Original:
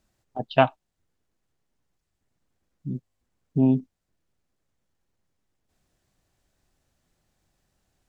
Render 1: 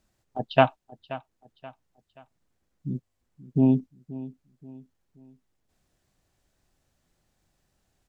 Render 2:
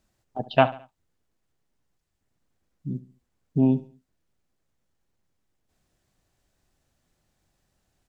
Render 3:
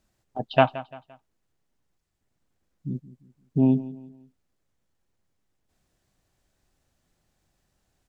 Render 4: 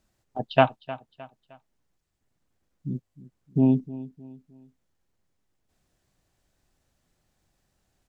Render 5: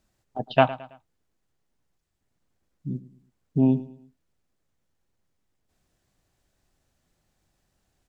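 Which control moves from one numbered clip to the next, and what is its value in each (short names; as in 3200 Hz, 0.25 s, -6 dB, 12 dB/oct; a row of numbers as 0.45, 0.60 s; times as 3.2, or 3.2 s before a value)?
feedback echo, time: 529, 71, 172, 308, 109 ms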